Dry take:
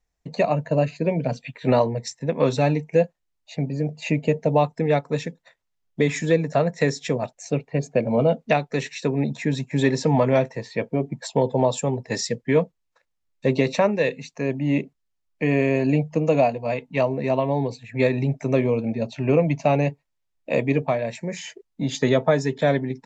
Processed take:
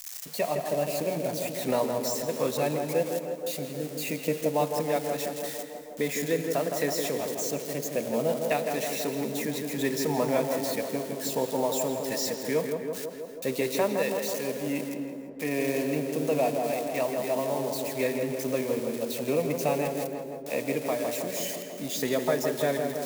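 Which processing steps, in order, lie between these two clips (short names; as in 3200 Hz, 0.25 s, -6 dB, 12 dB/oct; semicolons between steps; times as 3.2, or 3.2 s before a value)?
switching spikes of -20 dBFS; bell 120 Hz -10.5 dB 1.1 oct; tape echo 0.162 s, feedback 83%, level -3.5 dB, low-pass 1500 Hz; on a send at -12 dB: reverb, pre-delay 3 ms; on the sum: gain -7.5 dB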